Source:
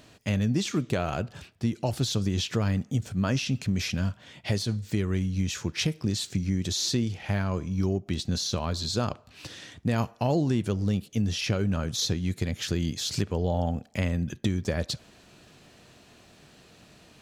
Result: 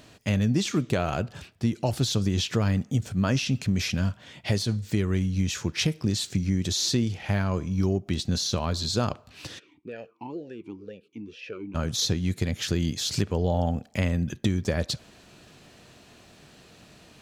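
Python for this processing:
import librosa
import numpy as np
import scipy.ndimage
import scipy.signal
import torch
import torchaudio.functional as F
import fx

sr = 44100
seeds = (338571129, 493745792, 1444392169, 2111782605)

y = fx.vowel_sweep(x, sr, vowels='e-u', hz=2.1, at=(9.58, 11.74), fade=0.02)
y = y * 10.0 ** (2.0 / 20.0)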